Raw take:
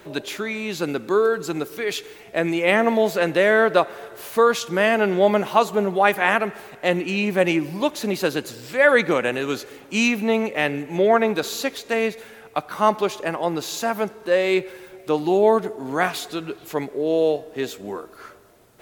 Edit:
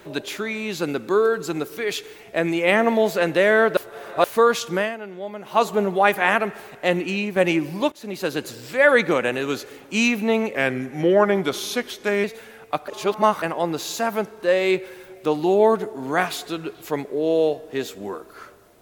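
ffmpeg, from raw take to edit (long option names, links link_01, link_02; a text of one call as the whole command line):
ffmpeg -i in.wav -filter_complex "[0:a]asplit=11[link_01][link_02][link_03][link_04][link_05][link_06][link_07][link_08][link_09][link_10][link_11];[link_01]atrim=end=3.772[link_12];[link_02]atrim=start=3.768:end=4.242,asetpts=PTS-STARTPTS,areverse[link_13];[link_03]atrim=start=4.238:end=5,asetpts=PTS-STARTPTS,afade=type=out:start_time=0.522:duration=0.24:curve=qua:silence=0.16788[link_14];[link_04]atrim=start=5:end=5.37,asetpts=PTS-STARTPTS,volume=-15.5dB[link_15];[link_05]atrim=start=5.37:end=7.36,asetpts=PTS-STARTPTS,afade=type=in:duration=0.24:curve=qua:silence=0.16788,afade=type=out:start_time=1.72:duration=0.27:silence=0.421697[link_16];[link_06]atrim=start=7.36:end=7.92,asetpts=PTS-STARTPTS,afade=type=in:duration=0.004:curve=hsin:silence=0.421697,afade=type=out:start_time=0.556:duration=0.004:curve=hsin:silence=0.112202[link_17];[link_07]atrim=start=7.92:end=10.554,asetpts=PTS-STARTPTS,afade=type=in:duration=0.52:silence=0.112202[link_18];[link_08]atrim=start=10.55:end=12.07,asetpts=PTS-STARTPTS,asetrate=39690,aresample=44100[link_19];[link_09]atrim=start=12.066:end=12.712[link_20];[link_10]atrim=start=12.708:end=13.252,asetpts=PTS-STARTPTS,areverse[link_21];[link_11]atrim=start=13.248[link_22];[link_12][link_13]acrossfade=duration=0.004:curve1=hsin:curve2=hsin[link_23];[link_14][link_15][link_16][link_17][link_18]concat=n=5:v=0:a=1[link_24];[link_23][link_24]acrossfade=duration=0.004:curve1=hsin:curve2=hsin[link_25];[link_25][link_19]acrossfade=duration=0.004:curve1=hsin:curve2=hsin[link_26];[link_26][link_20]acrossfade=duration=0.004:curve1=hsin:curve2=hsin[link_27];[link_27][link_21]acrossfade=duration=0.004:curve1=hsin:curve2=hsin[link_28];[link_28][link_22]acrossfade=duration=0.004:curve1=hsin:curve2=hsin" out.wav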